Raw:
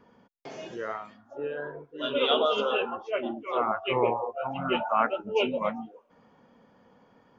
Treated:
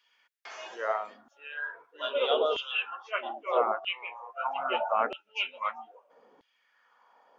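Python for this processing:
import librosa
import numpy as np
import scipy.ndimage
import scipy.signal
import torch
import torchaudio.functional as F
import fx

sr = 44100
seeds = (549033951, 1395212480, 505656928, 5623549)

y = fx.rider(x, sr, range_db=4, speed_s=0.5)
y = fx.filter_lfo_highpass(y, sr, shape='saw_down', hz=0.78, low_hz=330.0, high_hz=3200.0, q=2.2)
y = y * 10.0 ** (-2.5 / 20.0)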